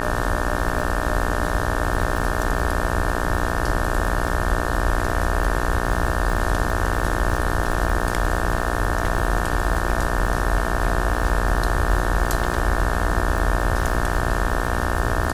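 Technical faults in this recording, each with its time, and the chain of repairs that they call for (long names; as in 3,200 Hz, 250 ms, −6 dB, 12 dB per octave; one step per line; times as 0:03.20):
mains buzz 60 Hz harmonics 30 −25 dBFS
surface crackle 46 per second −27 dBFS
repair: click removal
hum removal 60 Hz, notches 30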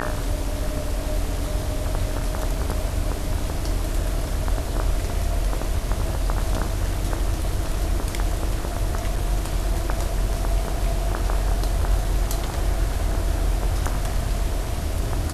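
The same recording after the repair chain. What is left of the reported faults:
none of them is left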